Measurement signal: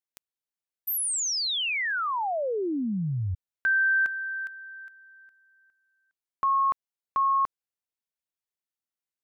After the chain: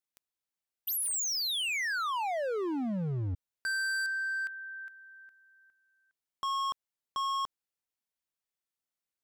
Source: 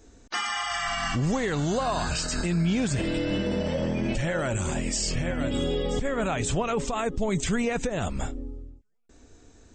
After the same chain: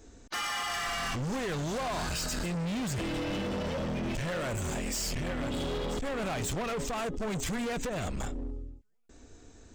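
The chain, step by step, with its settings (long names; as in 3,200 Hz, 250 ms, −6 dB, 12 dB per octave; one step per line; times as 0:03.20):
hard clipping −31 dBFS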